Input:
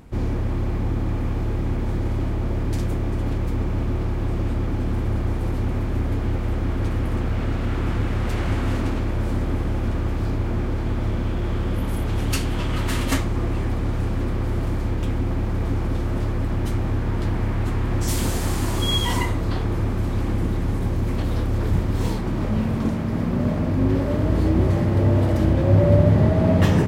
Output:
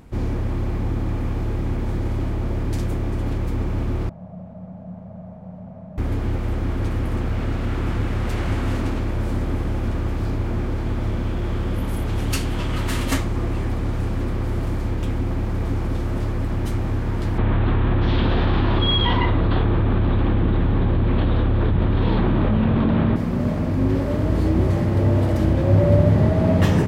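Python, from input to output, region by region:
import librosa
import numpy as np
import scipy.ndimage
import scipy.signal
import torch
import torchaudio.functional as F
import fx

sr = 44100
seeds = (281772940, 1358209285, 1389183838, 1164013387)

y = fx.chain(x, sr, fx.delta_mod(bps=64000, step_db=-40.5),
    fx.double_bandpass(hz=340.0, octaves=1.8), at=(4.09, 5.98))
y = fx.chain(y, sr, fx.ellip_lowpass(hz=3700.0, order=4, stop_db=60),
    fx.peak_eq(hz=2100.0, db=-4.0, octaves=0.24),
    fx.env_flatten(amount_pct=100), at=(17.38, 23.16))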